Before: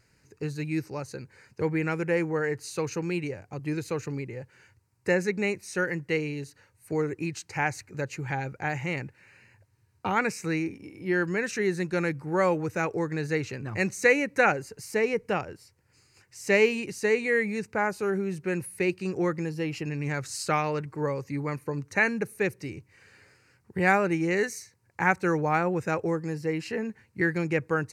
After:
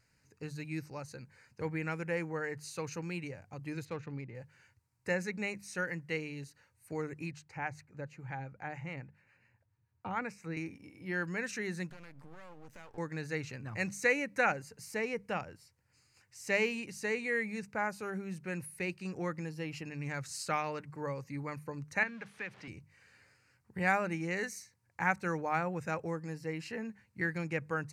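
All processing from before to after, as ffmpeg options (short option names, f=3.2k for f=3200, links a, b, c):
-filter_complex "[0:a]asettb=1/sr,asplit=3[a][b][c];[a]atrim=end=3.854[d];[b]atrim=start=3.85:end=4.35,asetpts=PTS-STARTPTS,afade=t=in:d=0.004:c=qsin,afade=t=out:st=0.496:d=0.004:c=qsin,equalizer=f=3.6k:t=o:w=0.23:g=5,adynamicsmooth=sensitivity=4:basefreq=2.5k[e];[c]atrim=start=4.346[f];[d][e]acrossfade=d=0.004:c1=hsin:c2=qsin[g];[g][f]acrossfade=d=0.004:c1=qsin:c2=hsin,asettb=1/sr,asplit=3[h][i][j];[h]atrim=end=7.314[k];[i]atrim=start=7.31:end=10.57,asetpts=PTS-STARTPTS,afade=t=in:d=0.004:c=qsin,afade=t=out:st=3.256:d=0.004:c=qsin,acrossover=split=650[l][m];[l]aeval=exprs='val(0)*(1-0.5/2+0.5/2*cos(2*PI*7.2*n/s))':c=same[n];[m]aeval=exprs='val(0)*(1-0.5/2-0.5/2*cos(2*PI*7.2*n/s))':c=same[o];[n][o]amix=inputs=2:normalize=0,highshelf=f=2.9k:g=-11.5[p];[j]atrim=start=10.566[q];[k][p]acrossfade=d=0.004:c1=hsin:c2=qsin[r];[r][q]acrossfade=d=0.004:c1=qsin:c2=hsin,asettb=1/sr,asplit=3[s][t][u];[s]atrim=end=11.904[v];[t]atrim=start=11.9:end=12.98,asetpts=PTS-STARTPTS,afade=t=in:d=0.004:c=qsin,afade=t=out:st=1.076:d=0.004:c=qsin,acompressor=threshold=-36dB:ratio=16:attack=3.2:release=140:knee=1:detection=peak,aeval=exprs='max(val(0),0)':c=same[w];[u]atrim=start=12.976[x];[v][w]acrossfade=d=0.004:c1=hsin:c2=qsin[y];[y][x]acrossfade=d=0.004:c1=qsin:c2=hsin,asettb=1/sr,asplit=3[z][aa][ab];[z]atrim=end=22.034[ac];[aa]atrim=start=22.03:end=22.68,asetpts=PTS-STARTPTS,afade=t=in:d=0.004:c=qsin,afade=t=out:st=0.646:d=0.004:c=qsin,aeval=exprs='val(0)+0.5*0.0133*sgn(val(0))':c=same,acrossover=split=160|900[ad][ae][af];[ad]acompressor=threshold=-52dB:ratio=4[ag];[ae]acompressor=threshold=-39dB:ratio=4[ah];[af]acompressor=threshold=-30dB:ratio=4[ai];[ag][ah][ai]amix=inputs=3:normalize=0,highpass=100,lowpass=3.3k[aj];[ab]atrim=start=22.676[ak];[ac][aj]acrossfade=d=0.004:c1=hsin:c2=qsin[al];[al][ak]acrossfade=d=0.004:c1=qsin:c2=hsin,equalizer=f=380:w=2.7:g=-8.5,bandreject=f=50:t=h:w=6,bandreject=f=100:t=h:w=6,bandreject=f=150:t=h:w=6,bandreject=f=200:t=h:w=6,volume=-6.5dB"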